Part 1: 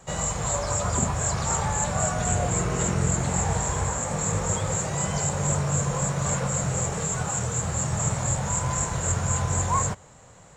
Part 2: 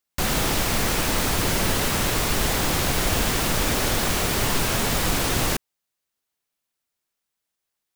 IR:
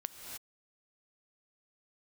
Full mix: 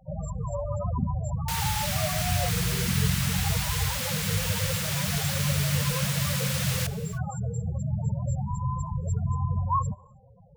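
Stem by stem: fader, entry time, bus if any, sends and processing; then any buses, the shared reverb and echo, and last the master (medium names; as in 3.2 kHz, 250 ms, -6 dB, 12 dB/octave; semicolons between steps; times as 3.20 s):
-0.5 dB, 0.00 s, send -24 dB, no echo send, low-pass 5.6 kHz 12 dB/octave; loudest bins only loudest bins 8
-7.0 dB, 1.30 s, send -9 dB, echo send -21.5 dB, high-pass 1.5 kHz 12 dB/octave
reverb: on, pre-delay 3 ms
echo: feedback delay 77 ms, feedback 45%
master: none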